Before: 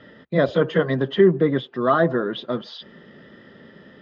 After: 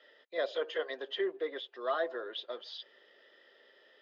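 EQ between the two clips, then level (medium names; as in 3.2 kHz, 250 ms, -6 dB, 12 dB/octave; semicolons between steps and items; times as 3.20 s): Bessel high-pass 760 Hz, order 6; distance through air 65 m; peaking EQ 1.2 kHz -12.5 dB 1.9 oct; -1.5 dB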